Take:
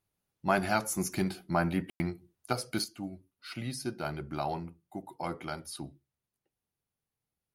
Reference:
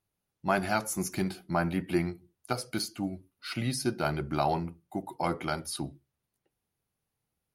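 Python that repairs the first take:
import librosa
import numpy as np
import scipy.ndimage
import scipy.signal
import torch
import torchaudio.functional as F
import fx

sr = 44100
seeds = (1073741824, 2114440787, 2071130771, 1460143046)

y = fx.fix_ambience(x, sr, seeds[0], print_start_s=0.0, print_end_s=0.5, start_s=1.9, end_s=2.0)
y = fx.gain(y, sr, db=fx.steps((0.0, 0.0), (2.84, 6.0)))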